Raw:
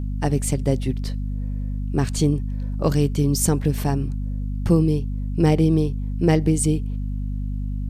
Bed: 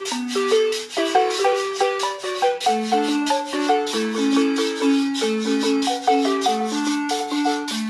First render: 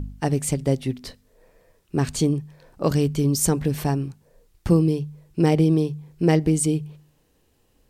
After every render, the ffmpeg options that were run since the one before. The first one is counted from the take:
-af "bandreject=f=50:t=h:w=4,bandreject=f=100:t=h:w=4,bandreject=f=150:t=h:w=4,bandreject=f=200:t=h:w=4,bandreject=f=250:t=h:w=4"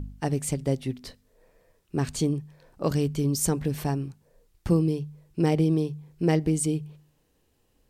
-af "volume=-4.5dB"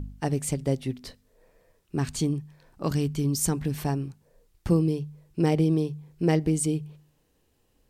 -filter_complex "[0:a]asettb=1/sr,asplit=3[a][b][c];[a]atrim=end=1.964[d];[b]atrim=start=1.96:end=3.84,asetpts=PTS-STARTPTS,afade=t=in:d=0.004:c=qsin,afade=t=out:st=1.876:d=0.004:c=qsin,equalizer=f=520:t=o:w=0.7:g=-6[e];[c]atrim=start=3.836[f];[d][e]acrossfade=d=0.004:c1=hsin:c2=qsin[g];[g][f]acrossfade=d=0.004:c1=qsin:c2=hsin"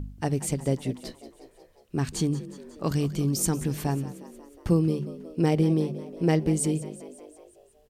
-filter_complex "[0:a]asplit=7[a][b][c][d][e][f][g];[b]adelay=181,afreqshift=49,volume=-16dB[h];[c]adelay=362,afreqshift=98,volume=-20.2dB[i];[d]adelay=543,afreqshift=147,volume=-24.3dB[j];[e]adelay=724,afreqshift=196,volume=-28.5dB[k];[f]adelay=905,afreqshift=245,volume=-32.6dB[l];[g]adelay=1086,afreqshift=294,volume=-36.8dB[m];[a][h][i][j][k][l][m]amix=inputs=7:normalize=0"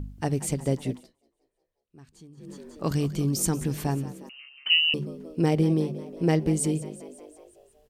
-filter_complex "[0:a]asettb=1/sr,asplit=3[a][b][c];[a]atrim=end=4.294[d];[b]atrim=start=4.29:end=4.94,asetpts=PTS-STARTPTS,afade=t=in:d=0.004:c=qsin,afade=t=out:st=0.646:d=0.004:c=qsin,lowpass=f=2.6k:t=q:w=0.5098,lowpass=f=2.6k:t=q:w=0.6013,lowpass=f=2.6k:t=q:w=0.9,lowpass=f=2.6k:t=q:w=2.563,afreqshift=-3100[e];[c]atrim=start=4.936[f];[d][e]acrossfade=d=0.004:c1=hsin:c2=qsin[g];[g][f]acrossfade=d=0.004:c1=qsin:c2=hsin,asplit=3[h][i][j];[h]atrim=end=1.07,asetpts=PTS-STARTPTS,afade=t=out:st=0.94:d=0.13:silence=0.0668344[k];[i]atrim=start=1.07:end=2.37,asetpts=PTS-STARTPTS,volume=-23.5dB[l];[j]atrim=start=2.37,asetpts=PTS-STARTPTS,afade=t=in:d=0.13:silence=0.0668344[m];[k][l][m]concat=n=3:v=0:a=1"

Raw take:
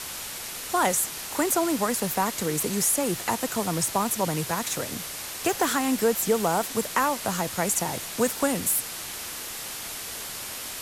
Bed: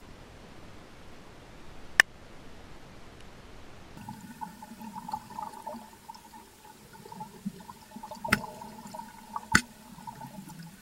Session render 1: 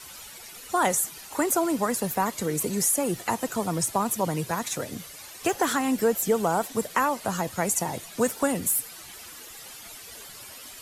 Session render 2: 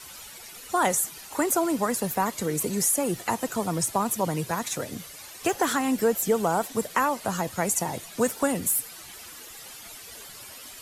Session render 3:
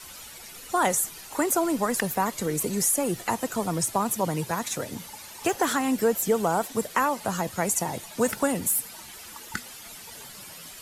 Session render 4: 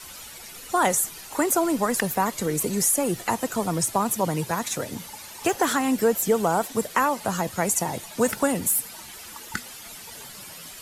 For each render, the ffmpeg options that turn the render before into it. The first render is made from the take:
-af "afftdn=nr=12:nf=-36"
-af anull
-filter_complex "[1:a]volume=-11.5dB[a];[0:a][a]amix=inputs=2:normalize=0"
-af "volume=2dB"

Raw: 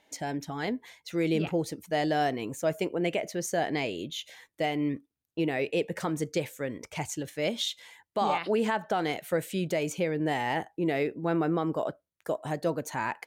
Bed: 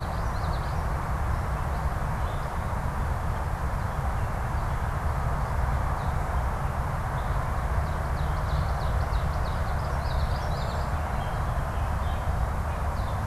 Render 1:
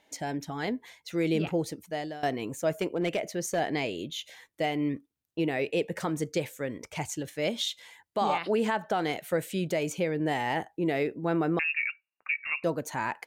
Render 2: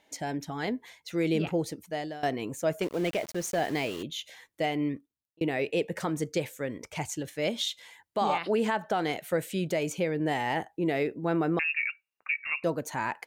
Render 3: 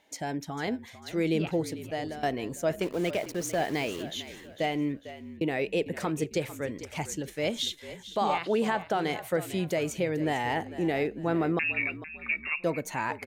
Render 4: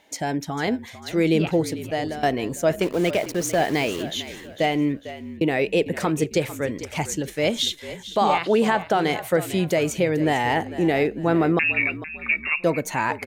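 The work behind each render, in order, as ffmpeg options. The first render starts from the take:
-filter_complex "[0:a]asettb=1/sr,asplit=3[a][b][c];[a]atrim=end=2.814[d];[b]atrim=start=2.81:end=3.6,asetpts=PTS-STARTPTS,afade=t=in:d=0.004:c=qsin,afade=t=out:st=0.786:d=0.004:c=qsin,volume=22dB,asoftclip=hard,volume=-22dB[e];[c]atrim=start=3.596[f];[d][e]acrossfade=d=0.004:c1=hsin:c2=qsin[g];[g][f]acrossfade=d=0.004:c1=qsin:c2=hsin,asettb=1/sr,asplit=3[h][i][j];[h]atrim=end=11.594[k];[i]atrim=start=11.59:end=12.64,asetpts=PTS-STARTPTS,afade=t=in:d=0.004:c=qsin,afade=t=out:st=1.046:d=0.004:c=qsin,lowpass=f=2.5k:t=q:w=0.5098,lowpass=f=2.5k:t=q:w=0.6013,lowpass=f=2.5k:t=q:w=0.9,lowpass=f=2.5k:t=q:w=2.563,afreqshift=-2900[l];[j]atrim=start=12.636[m];[k][l]acrossfade=d=0.004:c1=hsin:c2=qsin[n];[n][m]acrossfade=d=0.004:c1=qsin:c2=hsin,asplit=2[o][p];[o]atrim=end=2.23,asetpts=PTS-STARTPTS,afade=t=out:st=1.67:d=0.56:silence=0.112202[q];[p]atrim=start=2.23,asetpts=PTS-STARTPTS,afade=t=in:d=0.004:c=hsin:silence=0.112202[r];[q][r]concat=n=2:v=0:a=1"
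-filter_complex "[0:a]asettb=1/sr,asplit=3[a][b][c];[a]atrim=end=2.834[d];[b]atrim=start=2.83:end=4.03,asetpts=PTS-STARTPTS,afade=t=in:d=0.004:c=qsin,afade=t=out:st=1.196:d=0.004:c=qsin,aeval=exprs='val(0)*gte(abs(val(0)),0.0106)':c=same[e];[c]atrim=start=4.026[f];[d][e]acrossfade=d=0.004:c1=hsin:c2=qsin[g];[g][f]acrossfade=d=0.004:c1=qsin:c2=hsin,asplit=2[h][i];[h]atrim=end=5.41,asetpts=PTS-STARTPTS,afade=t=out:st=4.82:d=0.59[j];[i]atrim=start=5.41,asetpts=PTS-STARTPTS,afade=t=in:d=0.004:c=hsin[k];[j][k]concat=n=2:v=0:a=1"
-filter_complex "[0:a]asplit=4[a][b][c][d];[b]adelay=449,afreqshift=-51,volume=-14dB[e];[c]adelay=898,afreqshift=-102,volume=-22.9dB[f];[d]adelay=1347,afreqshift=-153,volume=-31.7dB[g];[a][e][f][g]amix=inputs=4:normalize=0"
-af "volume=7.5dB"

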